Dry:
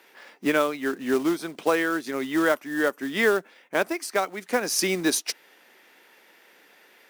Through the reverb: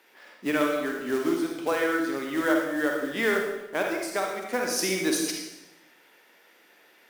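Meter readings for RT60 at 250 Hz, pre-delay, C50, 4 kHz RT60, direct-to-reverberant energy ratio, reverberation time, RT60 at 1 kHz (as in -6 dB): 1.2 s, 39 ms, 2.0 dB, 0.85 s, 0.5 dB, 0.90 s, 0.85 s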